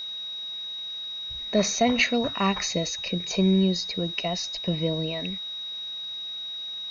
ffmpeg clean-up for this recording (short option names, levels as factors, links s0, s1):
-af "bandreject=f=3800:w=30,afwtdn=0.0032"